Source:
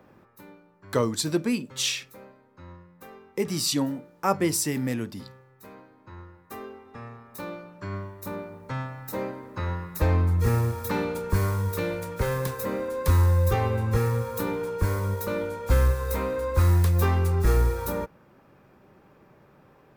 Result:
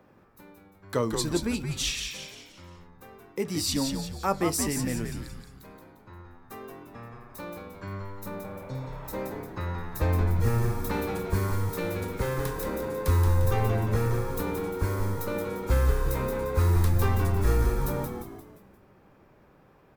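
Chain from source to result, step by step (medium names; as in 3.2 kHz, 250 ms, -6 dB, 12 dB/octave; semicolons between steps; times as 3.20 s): spectral replace 8.48–9.07 s, 560–3500 Hz both; frequency-shifting echo 175 ms, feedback 45%, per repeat -98 Hz, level -5.5 dB; trim -3 dB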